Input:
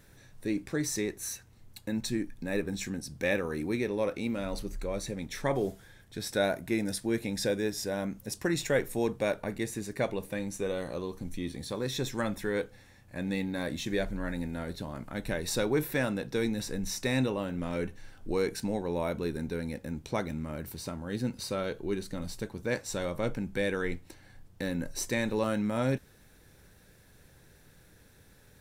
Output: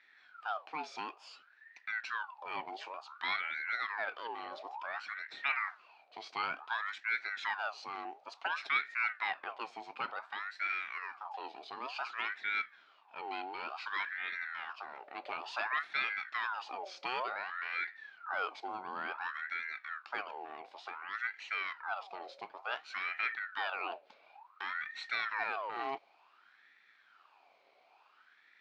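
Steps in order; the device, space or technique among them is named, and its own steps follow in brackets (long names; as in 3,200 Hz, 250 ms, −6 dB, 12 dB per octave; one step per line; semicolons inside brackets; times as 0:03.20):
voice changer toy (ring modulator whose carrier an LFO sweeps 1,200 Hz, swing 55%, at 0.56 Hz; loudspeaker in its box 410–4,400 Hz, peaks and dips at 520 Hz −5 dB, 770 Hz +4 dB, 1,400 Hz +4 dB, 2,400 Hz +8 dB, 4,100 Hz +5 dB)
level −6.5 dB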